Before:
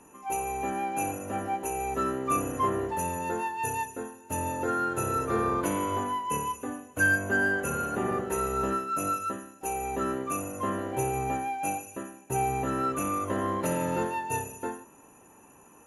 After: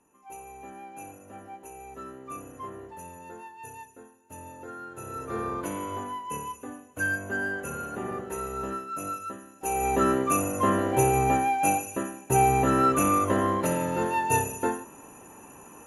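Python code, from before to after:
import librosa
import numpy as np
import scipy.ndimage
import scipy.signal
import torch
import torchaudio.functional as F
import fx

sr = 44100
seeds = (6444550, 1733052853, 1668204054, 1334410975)

y = fx.gain(x, sr, db=fx.line((4.91, -12.5), (5.38, -4.5), (9.39, -4.5), (9.86, 7.0), (13.16, 7.0), (13.94, 0.0), (14.23, 7.0)))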